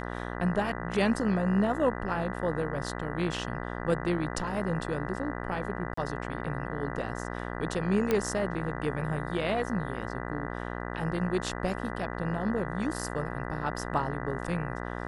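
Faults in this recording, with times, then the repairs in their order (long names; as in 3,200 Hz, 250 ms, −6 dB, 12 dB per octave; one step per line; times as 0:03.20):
mains buzz 60 Hz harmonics 33 −36 dBFS
0:05.94–0:05.97: drop-out 34 ms
0:08.11: click −13 dBFS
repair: click removal
hum removal 60 Hz, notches 33
repair the gap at 0:05.94, 34 ms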